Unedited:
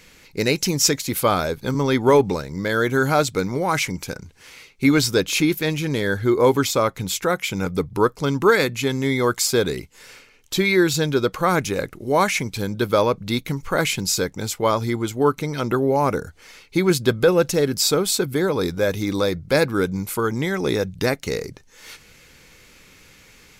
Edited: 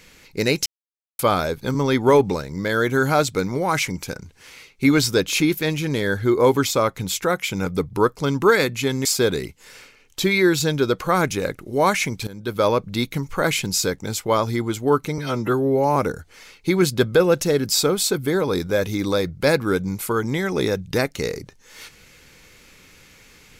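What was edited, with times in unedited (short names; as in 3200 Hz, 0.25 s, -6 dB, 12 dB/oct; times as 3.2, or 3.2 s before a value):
0.66–1.19 mute
9.05–9.39 cut
12.61–13.04 fade in, from -16.5 dB
15.52–16.04 stretch 1.5×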